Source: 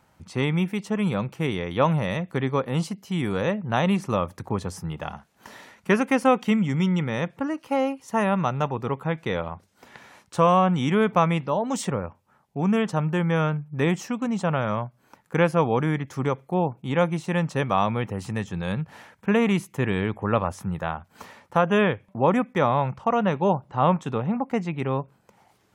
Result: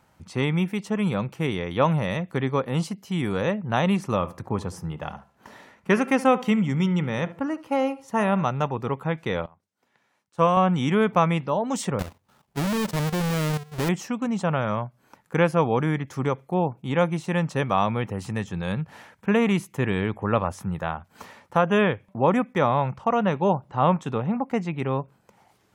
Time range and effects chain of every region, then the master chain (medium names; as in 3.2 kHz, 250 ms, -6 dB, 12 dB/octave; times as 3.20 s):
4.13–8.44 s: de-hum 338.8 Hz, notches 9 + filtered feedback delay 72 ms, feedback 30%, low-pass 2.1 kHz, level -16 dB + tape noise reduction on one side only decoder only
9.46–10.57 s: high-pass 99 Hz + de-esser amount 35% + upward expansion 2.5:1, over -29 dBFS
11.99–13.89 s: square wave that keeps the level + level held to a coarse grid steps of 12 dB
whole clip: none